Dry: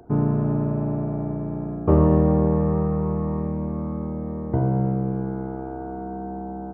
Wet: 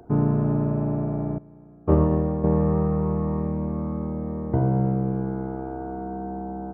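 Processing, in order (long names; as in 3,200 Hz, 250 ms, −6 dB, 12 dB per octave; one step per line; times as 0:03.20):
0:01.38–0:02.44: expander for the loud parts 2.5 to 1, over −26 dBFS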